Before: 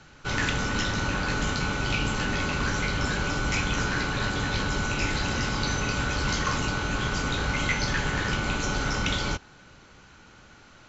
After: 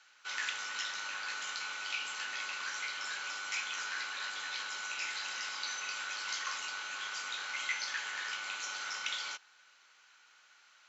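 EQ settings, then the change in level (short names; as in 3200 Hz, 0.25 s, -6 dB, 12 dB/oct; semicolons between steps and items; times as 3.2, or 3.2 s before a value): HPF 1400 Hz 12 dB/oct; -6.5 dB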